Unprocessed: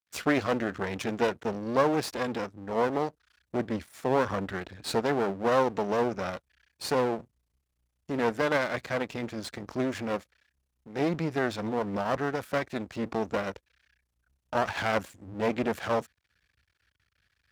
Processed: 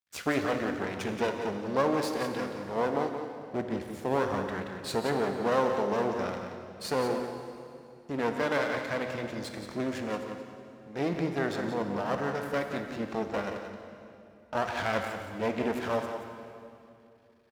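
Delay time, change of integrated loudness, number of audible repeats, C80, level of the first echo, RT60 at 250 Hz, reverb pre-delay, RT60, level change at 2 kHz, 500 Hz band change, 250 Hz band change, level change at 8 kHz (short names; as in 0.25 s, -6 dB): 0.176 s, -1.5 dB, 1, 4.5 dB, -8.5 dB, 3.0 s, 15 ms, 2.6 s, -1.5 dB, -1.5 dB, -1.5 dB, -1.5 dB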